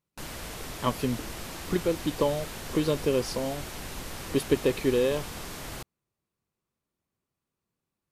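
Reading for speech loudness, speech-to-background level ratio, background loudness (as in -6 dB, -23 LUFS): -29.0 LUFS, 9.5 dB, -38.5 LUFS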